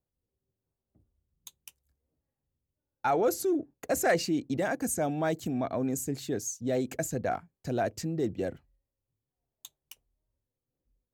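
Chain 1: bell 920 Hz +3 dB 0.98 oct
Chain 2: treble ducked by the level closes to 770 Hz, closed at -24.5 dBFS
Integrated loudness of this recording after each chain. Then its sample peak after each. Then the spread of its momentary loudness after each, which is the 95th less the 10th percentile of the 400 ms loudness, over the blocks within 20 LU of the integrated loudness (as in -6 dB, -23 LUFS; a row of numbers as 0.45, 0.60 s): -30.0, -32.0 LUFS; -14.0, -18.0 dBFS; 9, 8 LU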